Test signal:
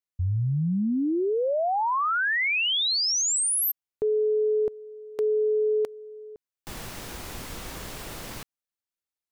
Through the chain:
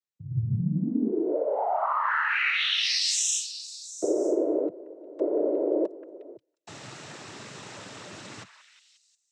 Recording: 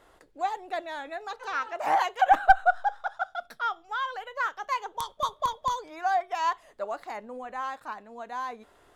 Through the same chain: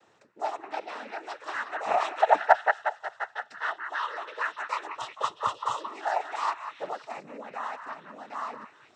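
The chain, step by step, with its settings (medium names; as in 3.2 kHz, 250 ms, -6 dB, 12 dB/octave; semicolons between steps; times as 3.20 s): repeats whose band climbs or falls 179 ms, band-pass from 1.5 kHz, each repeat 0.7 oct, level -6 dB; noise-vocoded speech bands 12; trim -1.5 dB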